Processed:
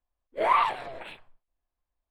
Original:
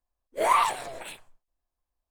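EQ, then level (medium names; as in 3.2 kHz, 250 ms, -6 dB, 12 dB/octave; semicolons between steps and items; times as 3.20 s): distance through air 440 m; treble shelf 2.5 kHz +10.5 dB; 0.0 dB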